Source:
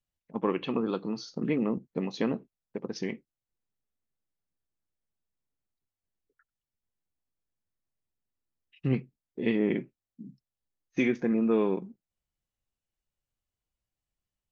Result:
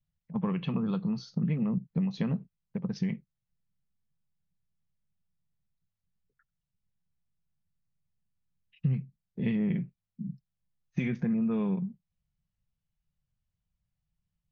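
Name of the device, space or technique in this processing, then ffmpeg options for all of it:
jukebox: -af "lowpass=5400,lowshelf=frequency=230:width_type=q:width=3:gain=10,acompressor=threshold=-23dB:ratio=6,volume=-2.5dB"

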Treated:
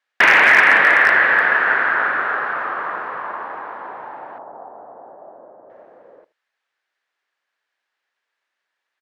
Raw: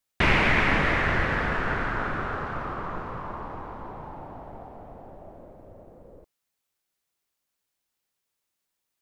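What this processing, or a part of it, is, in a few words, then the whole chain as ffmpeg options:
megaphone: -filter_complex "[0:a]highpass=550,lowpass=3100,equalizer=frequency=1700:width_type=o:width=0.45:gain=9,asoftclip=type=hard:threshold=-12.5dB,asettb=1/sr,asplit=3[link_01][link_02][link_03];[link_01]atrim=end=4.384[link_04];[link_02]atrim=start=4.38:end=5.7,asetpts=PTS-STARTPTS,afade=type=in:duration=0.004:curve=qsin,afade=type=out:start_time=1.316:duration=0.004:curve=qsin,lowpass=frequency=1200:width=0.5412,lowpass=frequency=1200:width=1.3066[link_05];[link_03]atrim=start=5.696[link_06];[link_04][link_05]acrossfade=duration=0.004:curve1=hsin:curve2=qsin[link_07];[link_07][link_06]acrossfade=duration=0.004:curve1=qsin:curve2=hsin,aecho=1:1:78:0.0891,volume=8.5dB"

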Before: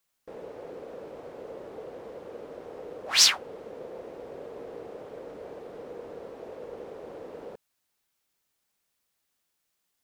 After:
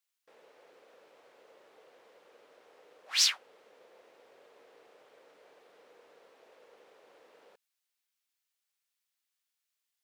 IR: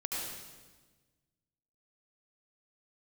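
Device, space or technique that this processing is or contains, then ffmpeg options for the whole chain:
filter by subtraction: -filter_complex "[0:a]asplit=2[link_01][link_02];[link_02]lowpass=2600,volume=-1[link_03];[link_01][link_03]amix=inputs=2:normalize=0,volume=-8dB"

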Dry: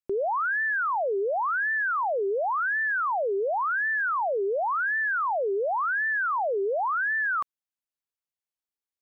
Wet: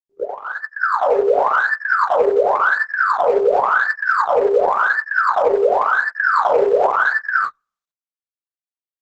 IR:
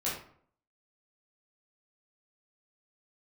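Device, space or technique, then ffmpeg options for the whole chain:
speakerphone in a meeting room: -filter_complex "[0:a]asettb=1/sr,asplit=3[link_01][link_02][link_03];[link_01]atrim=end=6.024[link_04];[link_02]atrim=start=6.02:end=6.83,asetpts=PTS-STARTPTS,afade=type=in:duration=0.004:curve=qsin,afade=type=out:start_time=0.806:duration=0.004:curve=qsin,asplit=2[link_05][link_06];[link_06]adelay=36,volume=-8.5dB[link_07];[link_05][link_07]amix=inputs=2:normalize=0,atrim=end_sample=35721[link_08];[link_03]atrim=start=6.826[link_09];[link_04][link_08]acrossfade=duration=0.004:curve1=hsin:curve2=qsin[link_10];[link_10][link_09]acrossfade=duration=0.004:curve1=qsin:curve2=hsin[link_11];[1:a]atrim=start_sample=2205[link_12];[link_11][link_12]afir=irnorm=-1:irlink=0,asplit=2[link_13][link_14];[link_14]adelay=90,highpass=300,lowpass=3400,asoftclip=type=hard:threshold=-18.5dB,volume=-11dB[link_15];[link_13][link_15]amix=inputs=2:normalize=0,dynaudnorm=framelen=150:gausssize=9:maxgain=4dB,agate=range=-41dB:threshold=-17dB:ratio=16:detection=peak,volume=1dB" -ar 48000 -c:a libopus -b:a 12k

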